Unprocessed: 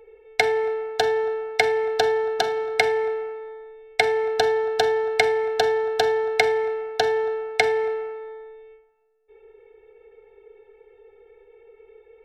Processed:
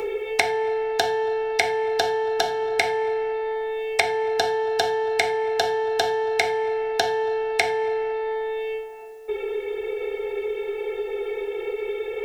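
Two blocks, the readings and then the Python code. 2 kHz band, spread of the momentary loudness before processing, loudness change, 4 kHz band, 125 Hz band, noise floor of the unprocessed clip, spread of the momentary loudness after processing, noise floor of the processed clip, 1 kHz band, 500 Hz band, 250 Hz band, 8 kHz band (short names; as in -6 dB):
-0.5 dB, 10 LU, -2.0 dB, +1.0 dB, n/a, -56 dBFS, 6 LU, -33 dBFS, +1.0 dB, 0.0 dB, +5.0 dB, +3.0 dB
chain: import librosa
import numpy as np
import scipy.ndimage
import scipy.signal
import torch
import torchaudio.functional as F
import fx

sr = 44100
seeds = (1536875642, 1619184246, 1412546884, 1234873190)

y = fx.rev_gated(x, sr, seeds[0], gate_ms=110, shape='falling', drr_db=1.0)
y = fx.band_squash(y, sr, depth_pct=100)
y = y * 10.0 ** (-1.5 / 20.0)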